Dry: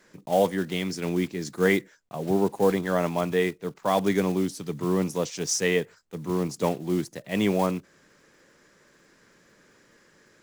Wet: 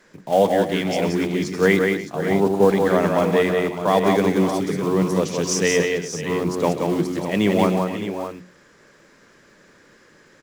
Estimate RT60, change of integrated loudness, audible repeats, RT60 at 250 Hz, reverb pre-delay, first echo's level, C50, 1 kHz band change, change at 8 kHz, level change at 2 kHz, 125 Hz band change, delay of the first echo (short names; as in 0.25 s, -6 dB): none, +6.0 dB, 5, none, none, -14.5 dB, none, +7.0 dB, +4.0 dB, +6.5 dB, +5.5 dB, 0.13 s